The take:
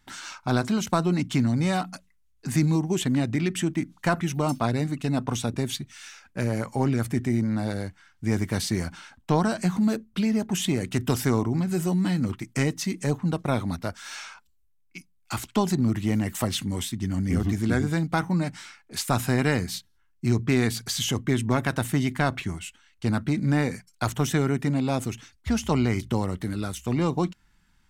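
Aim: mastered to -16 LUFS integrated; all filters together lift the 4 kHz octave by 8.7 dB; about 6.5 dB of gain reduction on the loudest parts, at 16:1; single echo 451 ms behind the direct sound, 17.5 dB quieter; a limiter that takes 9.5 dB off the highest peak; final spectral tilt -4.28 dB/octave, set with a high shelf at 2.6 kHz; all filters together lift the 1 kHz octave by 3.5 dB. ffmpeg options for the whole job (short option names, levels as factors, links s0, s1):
-af "equalizer=f=1000:t=o:g=3.5,highshelf=f=2600:g=5.5,equalizer=f=4000:t=o:g=6,acompressor=threshold=0.0794:ratio=16,alimiter=limit=0.141:level=0:latency=1,aecho=1:1:451:0.133,volume=4.47"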